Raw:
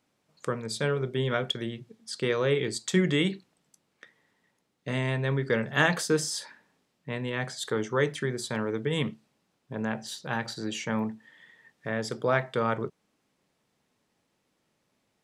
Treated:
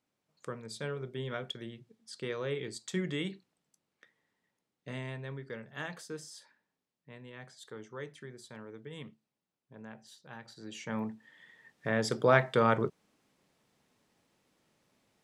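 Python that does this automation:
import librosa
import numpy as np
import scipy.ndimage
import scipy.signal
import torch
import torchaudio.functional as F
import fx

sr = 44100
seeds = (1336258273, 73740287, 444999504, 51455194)

y = fx.gain(x, sr, db=fx.line((4.91, -10.0), (5.6, -17.0), (10.46, -17.0), (10.94, -6.5), (12.07, 1.5)))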